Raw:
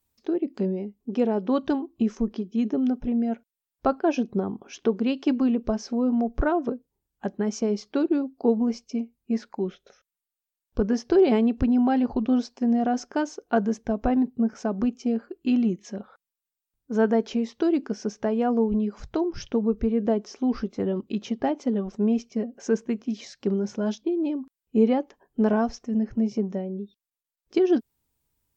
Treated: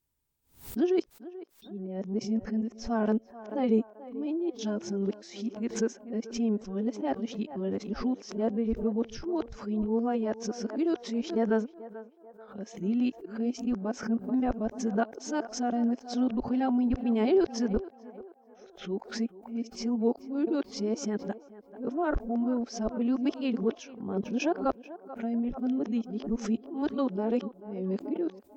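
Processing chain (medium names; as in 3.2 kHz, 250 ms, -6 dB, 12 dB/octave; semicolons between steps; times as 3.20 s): reverse the whole clip; band-passed feedback delay 437 ms, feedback 51%, band-pass 750 Hz, level -14 dB; swell ahead of each attack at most 140 dB/s; trim -5.5 dB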